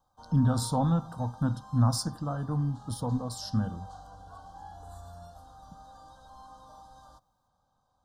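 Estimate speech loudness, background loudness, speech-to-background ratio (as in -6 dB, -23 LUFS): -29.5 LUFS, -49.5 LUFS, 20.0 dB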